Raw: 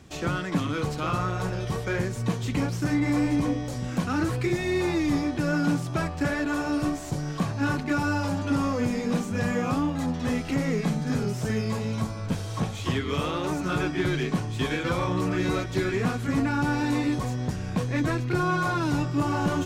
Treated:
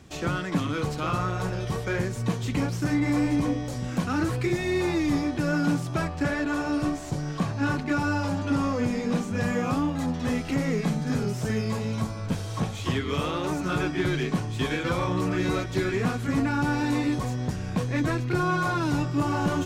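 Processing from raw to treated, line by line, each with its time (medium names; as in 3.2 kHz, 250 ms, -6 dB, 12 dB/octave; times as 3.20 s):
6.05–9.40 s: treble shelf 11 kHz -8 dB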